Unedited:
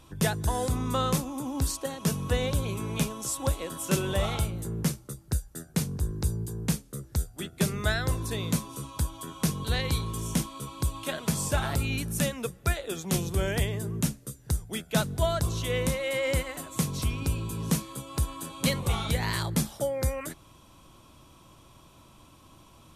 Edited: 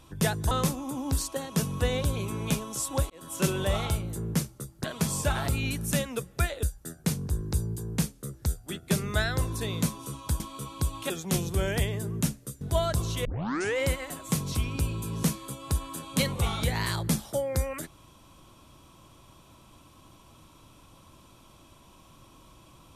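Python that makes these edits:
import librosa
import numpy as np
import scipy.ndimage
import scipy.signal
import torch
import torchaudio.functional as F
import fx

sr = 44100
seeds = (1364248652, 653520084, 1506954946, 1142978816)

y = fx.edit(x, sr, fx.cut(start_s=0.51, length_s=0.49),
    fx.fade_in_span(start_s=3.59, length_s=0.3),
    fx.cut(start_s=9.1, length_s=1.31),
    fx.move(start_s=11.11, length_s=1.79, to_s=5.33),
    fx.cut(start_s=14.41, length_s=0.67),
    fx.tape_start(start_s=15.72, length_s=0.54), tone=tone)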